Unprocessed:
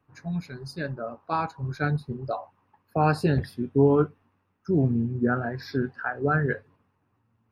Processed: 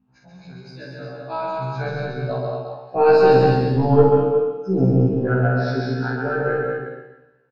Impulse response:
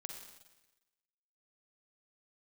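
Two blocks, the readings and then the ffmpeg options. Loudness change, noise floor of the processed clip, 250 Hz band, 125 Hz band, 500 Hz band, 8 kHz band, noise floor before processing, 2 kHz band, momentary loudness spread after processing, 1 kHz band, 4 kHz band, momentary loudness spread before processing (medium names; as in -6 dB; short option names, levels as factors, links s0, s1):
+7.5 dB, -58 dBFS, +4.0 dB, +6.0 dB, +10.5 dB, no reading, -72 dBFS, +4.5 dB, 17 LU, +6.5 dB, +7.0 dB, 12 LU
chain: -filter_complex "[0:a]aeval=exprs='val(0)+0.00562*(sin(2*PI*50*n/s)+sin(2*PI*2*50*n/s)/2+sin(2*PI*3*50*n/s)/3+sin(2*PI*4*50*n/s)/4+sin(2*PI*5*50*n/s)/5)':c=same,highpass=150,equalizer=f=340:t=q:w=4:g=-8,equalizer=f=1200:t=q:w=4:g=-7,equalizer=f=1900:t=q:w=4:g=-8,lowpass=f=5300:w=0.5412,lowpass=f=5300:w=1.3066,dynaudnorm=f=270:g=13:m=3.98,asplit=2[s0][s1];[s1]adelay=48,volume=0.668[s2];[s0][s2]amix=inputs=2:normalize=0,aecho=1:1:222:0.562,asplit=2[s3][s4];[1:a]atrim=start_sample=2205,lowshelf=f=110:g=10.5,adelay=135[s5];[s4][s5]afir=irnorm=-1:irlink=0,volume=1.26[s6];[s3][s6]amix=inputs=2:normalize=0,adynamicequalizer=threshold=0.0355:dfrequency=470:dqfactor=4.5:tfrequency=470:tqfactor=4.5:attack=5:release=100:ratio=0.375:range=3.5:mode=boostabove:tftype=bell,aeval=exprs='1.68*(cos(1*acos(clip(val(0)/1.68,-1,1)))-cos(1*PI/2))+0.211*(cos(2*acos(clip(val(0)/1.68,-1,1)))-cos(2*PI/2))':c=same,bandreject=f=50:t=h:w=6,bandreject=f=100:t=h:w=6,bandreject=f=150:t=h:w=6,bandreject=f=200:t=h:w=6,bandreject=f=250:t=h:w=6,afftfilt=real='re*1.73*eq(mod(b,3),0)':imag='im*1.73*eq(mod(b,3),0)':win_size=2048:overlap=0.75,volume=0.794"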